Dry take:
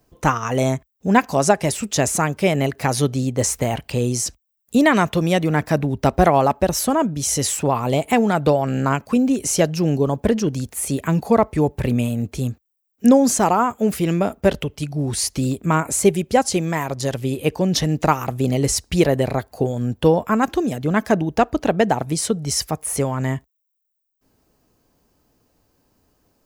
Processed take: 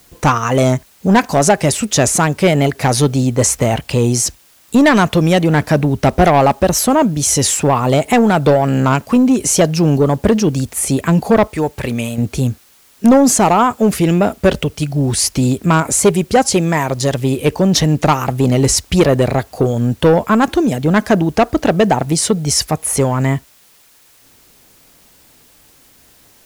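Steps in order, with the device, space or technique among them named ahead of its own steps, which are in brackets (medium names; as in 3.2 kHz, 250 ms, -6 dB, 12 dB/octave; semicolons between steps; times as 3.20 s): 11.47–12.18 s: bass shelf 460 Hz -10.5 dB; compact cassette (saturation -12 dBFS, distortion -13 dB; low-pass 13 kHz; wow and flutter; white noise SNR 35 dB); trim +8 dB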